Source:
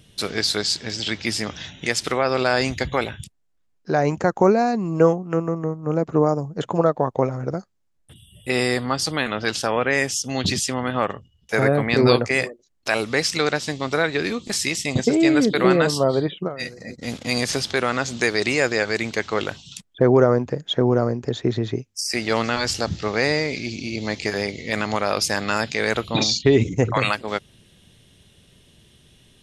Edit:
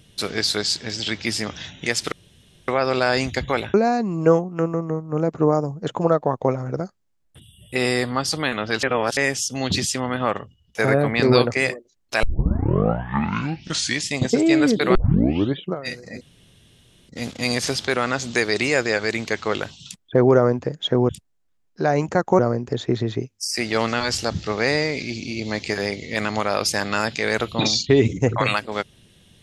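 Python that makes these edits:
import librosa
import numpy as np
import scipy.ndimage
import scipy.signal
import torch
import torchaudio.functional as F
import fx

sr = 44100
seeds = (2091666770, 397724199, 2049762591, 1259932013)

y = fx.edit(x, sr, fx.insert_room_tone(at_s=2.12, length_s=0.56),
    fx.move(start_s=3.18, length_s=1.3, to_s=20.95),
    fx.reverse_span(start_s=9.57, length_s=0.34),
    fx.tape_start(start_s=12.97, length_s=1.93),
    fx.tape_start(start_s=15.69, length_s=0.63),
    fx.insert_room_tone(at_s=16.95, length_s=0.88), tone=tone)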